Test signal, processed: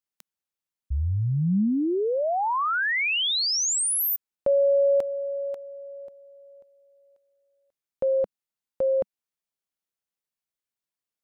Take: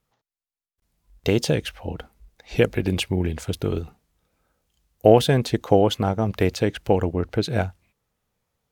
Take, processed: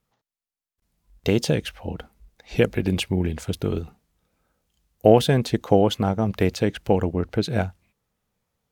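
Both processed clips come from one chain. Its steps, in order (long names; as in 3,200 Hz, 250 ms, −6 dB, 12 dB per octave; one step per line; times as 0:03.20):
parametric band 200 Hz +3.5 dB 0.6 octaves
level −1 dB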